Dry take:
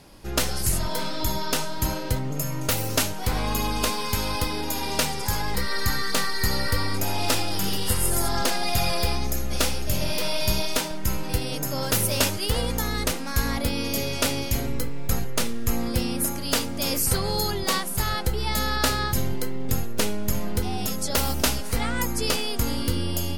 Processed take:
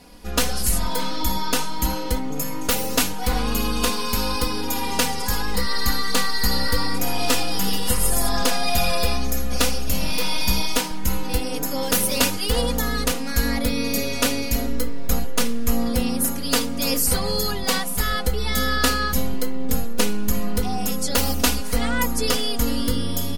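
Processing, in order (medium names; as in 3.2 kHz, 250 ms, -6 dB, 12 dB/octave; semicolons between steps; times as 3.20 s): comb 4.1 ms, depth 95%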